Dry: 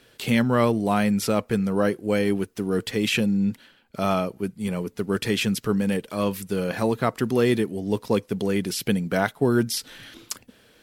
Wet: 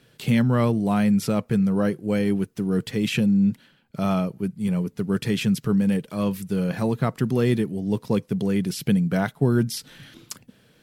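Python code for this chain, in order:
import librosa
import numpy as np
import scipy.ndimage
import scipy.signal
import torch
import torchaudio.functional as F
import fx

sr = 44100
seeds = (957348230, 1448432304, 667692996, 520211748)

y = fx.peak_eq(x, sr, hz=150.0, db=13.0, octaves=0.98)
y = y * 10.0 ** (-4.0 / 20.0)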